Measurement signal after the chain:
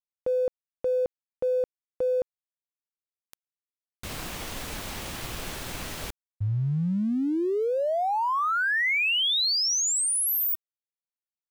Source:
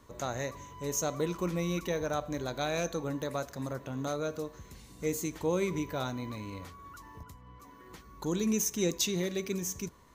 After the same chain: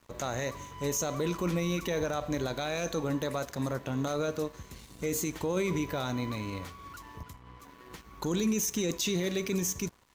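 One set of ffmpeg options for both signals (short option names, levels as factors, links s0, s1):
-af "equalizer=f=2900:t=o:w=1.1:g=2.5,alimiter=level_in=1.33:limit=0.0631:level=0:latency=1:release=14,volume=0.75,aeval=exprs='sgn(val(0))*max(abs(val(0))-0.00141,0)':c=same,volume=1.88"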